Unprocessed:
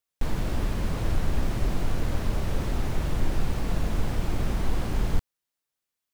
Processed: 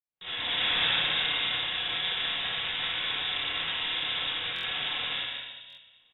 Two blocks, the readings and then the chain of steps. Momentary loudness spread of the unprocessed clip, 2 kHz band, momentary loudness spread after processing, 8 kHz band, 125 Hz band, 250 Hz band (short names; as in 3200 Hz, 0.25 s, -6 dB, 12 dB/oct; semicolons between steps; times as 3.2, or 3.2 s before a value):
1 LU, +11.0 dB, 8 LU, under -30 dB, -21.5 dB, -16.0 dB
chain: opening faded in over 1.77 s; HPF 300 Hz 6 dB/oct; high shelf 2700 Hz +6.5 dB; feedback echo 0.179 s, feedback 49%, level -24 dB; negative-ratio compressor -42 dBFS, ratio -1; FDN reverb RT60 1.6 s, low-frequency decay 1×, high-frequency decay 0.7×, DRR -8.5 dB; dynamic EQ 1700 Hz, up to +6 dB, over -49 dBFS, Q 0.71; inverted band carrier 3700 Hz; stuck buffer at 4.54/5.68, samples 1024, times 3